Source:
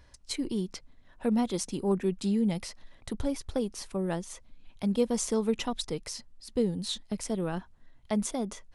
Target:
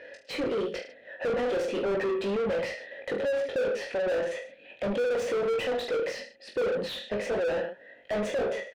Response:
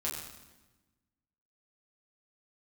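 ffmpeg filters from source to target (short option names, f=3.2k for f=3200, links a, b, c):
-filter_complex "[0:a]asplit=3[a][b][c];[a]bandpass=f=530:t=q:w=8,volume=0dB[d];[b]bandpass=f=1.84k:t=q:w=8,volume=-6dB[e];[c]bandpass=f=2.48k:t=q:w=8,volume=-9dB[f];[d][e][f]amix=inputs=3:normalize=0,aecho=1:1:20|44|72.8|107.4|148.8:0.631|0.398|0.251|0.158|0.1,asplit=2[g][h];[h]highpass=f=720:p=1,volume=38dB,asoftclip=type=tanh:threshold=-21.5dB[i];[g][i]amix=inputs=2:normalize=0,lowpass=f=1.3k:p=1,volume=-6dB,volume=1.5dB"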